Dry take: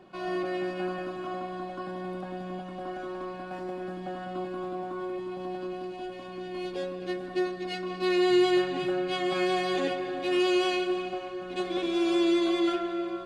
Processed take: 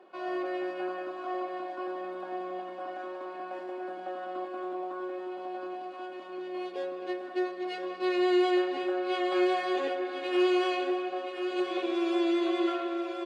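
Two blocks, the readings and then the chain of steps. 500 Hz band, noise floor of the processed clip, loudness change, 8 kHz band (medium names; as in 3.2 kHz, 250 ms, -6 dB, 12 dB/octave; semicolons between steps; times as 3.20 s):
-1.0 dB, -42 dBFS, -1.5 dB, no reading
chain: high-pass 340 Hz 24 dB/octave; treble shelf 3.6 kHz -11.5 dB; feedback delay 1026 ms, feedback 45%, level -8 dB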